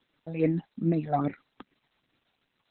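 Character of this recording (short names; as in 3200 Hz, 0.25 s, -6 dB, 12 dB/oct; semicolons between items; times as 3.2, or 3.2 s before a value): tremolo triangle 7.1 Hz, depth 50%; phasing stages 8, 2.5 Hz, lowest notch 330–1100 Hz; a quantiser's noise floor 12-bit, dither triangular; Opus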